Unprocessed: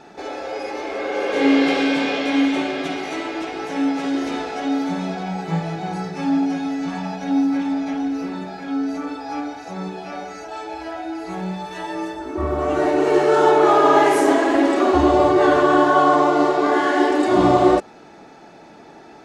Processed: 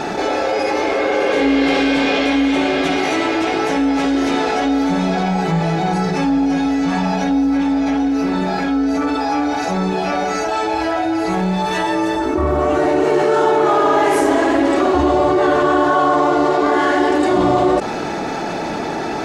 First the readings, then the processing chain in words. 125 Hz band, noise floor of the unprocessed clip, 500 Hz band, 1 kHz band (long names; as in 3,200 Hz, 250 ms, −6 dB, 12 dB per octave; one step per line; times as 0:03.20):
+6.0 dB, −44 dBFS, +2.5 dB, +3.0 dB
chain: amplitude modulation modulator 220 Hz, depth 15%
envelope flattener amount 70%
level −1 dB